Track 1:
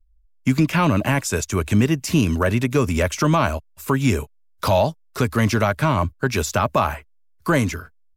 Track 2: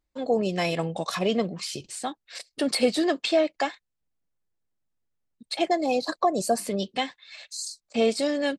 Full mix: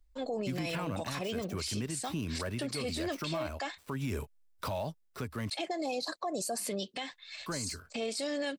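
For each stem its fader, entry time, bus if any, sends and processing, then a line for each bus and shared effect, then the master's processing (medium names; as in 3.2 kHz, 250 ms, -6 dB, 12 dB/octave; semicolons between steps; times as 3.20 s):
-5.0 dB, 0.00 s, muted 5.50–7.13 s, no send, dead-time distortion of 0.056 ms; band-stop 6.7 kHz, Q 9.8; auto duck -11 dB, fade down 1.00 s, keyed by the second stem
-3.5 dB, 0.00 s, no send, tilt EQ +1.5 dB/octave; peak limiter -20 dBFS, peak gain reduction 9.5 dB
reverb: none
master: peak limiter -26.5 dBFS, peak gain reduction 10 dB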